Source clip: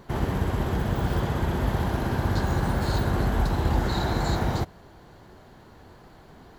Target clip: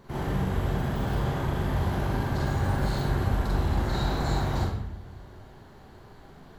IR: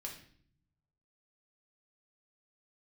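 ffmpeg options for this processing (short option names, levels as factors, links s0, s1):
-filter_complex "[0:a]asoftclip=type=tanh:threshold=0.1,asplit=2[s0][s1];[1:a]atrim=start_sample=2205,asetrate=30429,aresample=44100,adelay=42[s2];[s1][s2]afir=irnorm=-1:irlink=0,volume=1.41[s3];[s0][s3]amix=inputs=2:normalize=0,volume=0.531"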